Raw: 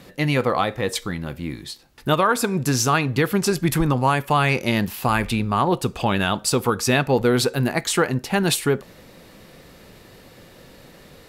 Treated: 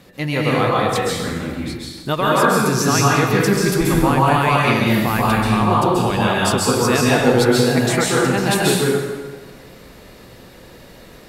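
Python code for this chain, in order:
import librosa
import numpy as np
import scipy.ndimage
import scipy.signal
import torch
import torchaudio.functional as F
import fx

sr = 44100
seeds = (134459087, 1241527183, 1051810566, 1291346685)

y = fx.rev_plate(x, sr, seeds[0], rt60_s=1.4, hf_ratio=0.75, predelay_ms=120, drr_db=-5.5)
y = y * 10.0 ** (-2.0 / 20.0)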